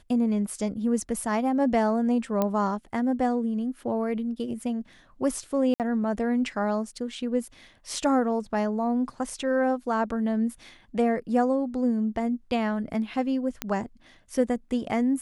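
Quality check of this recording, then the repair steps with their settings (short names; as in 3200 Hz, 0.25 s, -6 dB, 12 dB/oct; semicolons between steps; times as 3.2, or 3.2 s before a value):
2.42 pop -12 dBFS
5.74–5.8 gap 58 ms
13.62 pop -11 dBFS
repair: de-click; interpolate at 5.74, 58 ms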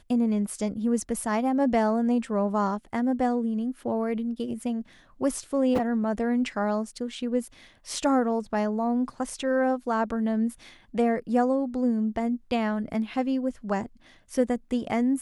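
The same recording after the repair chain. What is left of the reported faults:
none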